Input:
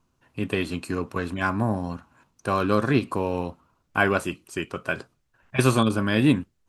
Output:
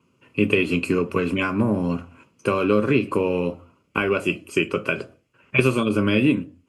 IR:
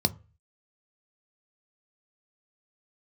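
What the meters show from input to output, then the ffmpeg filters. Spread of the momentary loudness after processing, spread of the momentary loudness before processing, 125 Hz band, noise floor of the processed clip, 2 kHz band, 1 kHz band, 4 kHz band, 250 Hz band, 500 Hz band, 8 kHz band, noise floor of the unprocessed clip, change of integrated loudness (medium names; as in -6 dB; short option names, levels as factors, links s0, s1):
10 LU, 12 LU, 0.0 dB, -65 dBFS, +2.5 dB, -1.5 dB, +2.0 dB, +3.0 dB, +5.0 dB, -4.0 dB, -71 dBFS, +3.0 dB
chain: -filter_complex "[0:a]highpass=230,acompressor=threshold=0.0447:ratio=6[s0];[1:a]atrim=start_sample=2205,atrim=end_sample=6174,asetrate=24696,aresample=44100[s1];[s0][s1]afir=irnorm=-1:irlink=0,volume=0.531"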